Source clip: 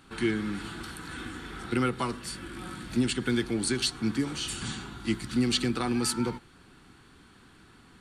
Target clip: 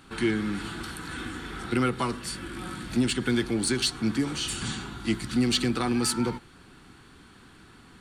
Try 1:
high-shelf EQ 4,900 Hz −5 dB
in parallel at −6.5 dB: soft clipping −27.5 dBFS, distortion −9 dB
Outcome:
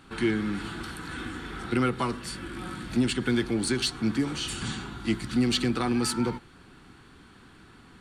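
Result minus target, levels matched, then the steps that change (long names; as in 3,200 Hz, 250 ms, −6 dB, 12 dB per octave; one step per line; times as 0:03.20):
8,000 Hz band −3.0 dB
remove: high-shelf EQ 4,900 Hz −5 dB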